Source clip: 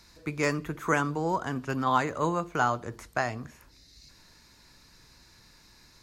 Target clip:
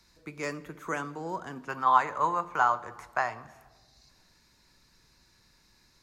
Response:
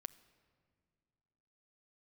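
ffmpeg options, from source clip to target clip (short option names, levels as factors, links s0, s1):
-filter_complex "[0:a]asettb=1/sr,asplit=3[s0][s1][s2];[s0]atrim=end=1.684[s3];[s1]atrim=start=1.68:end=3.45,asetpts=PTS-STARTPTS,afade=t=in:d=0.004:c=qsin,afade=t=out:st=1.766:d=0.004:c=qsin,equalizer=f=250:t=o:w=1:g=-6,equalizer=f=1000:t=o:w=1:g=12,equalizer=f=2000:t=o:w=1:g=4[s4];[s2]atrim=start=3.446[s5];[s3][s4]acrossfade=d=0.004:c1=hsin:c2=qsin[s6];[s6][s5]acrossfade=d=0.004:c1=qsin:c2=hsin,acrossover=split=180|2500[s7][s8][s9];[s7]acompressor=threshold=0.00447:ratio=6[s10];[s10][s8][s9]amix=inputs=3:normalize=0[s11];[1:a]atrim=start_sample=2205,asetrate=57330,aresample=44100[s12];[s11][s12]afir=irnorm=-1:irlink=0"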